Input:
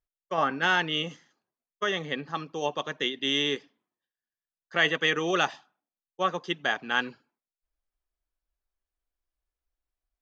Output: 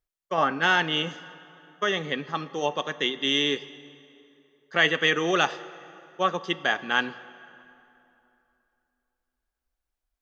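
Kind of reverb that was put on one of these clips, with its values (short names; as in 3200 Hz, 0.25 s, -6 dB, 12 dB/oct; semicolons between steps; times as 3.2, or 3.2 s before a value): plate-style reverb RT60 2.9 s, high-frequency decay 0.7×, DRR 15 dB; gain +2.5 dB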